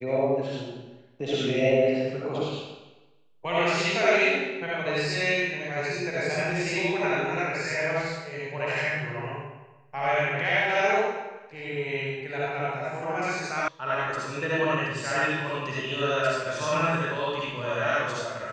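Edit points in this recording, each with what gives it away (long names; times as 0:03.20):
0:13.68: cut off before it has died away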